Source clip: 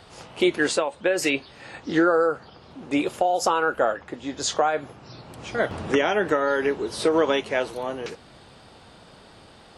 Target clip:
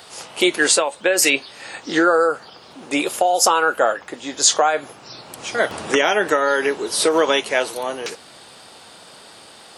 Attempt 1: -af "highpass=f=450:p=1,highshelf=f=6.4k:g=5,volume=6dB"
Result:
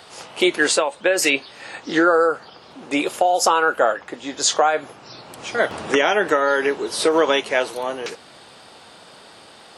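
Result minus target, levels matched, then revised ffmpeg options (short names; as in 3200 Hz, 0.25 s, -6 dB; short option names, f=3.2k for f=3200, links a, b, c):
8000 Hz band -4.5 dB
-af "highpass=f=450:p=1,highshelf=f=6.4k:g=14.5,volume=6dB"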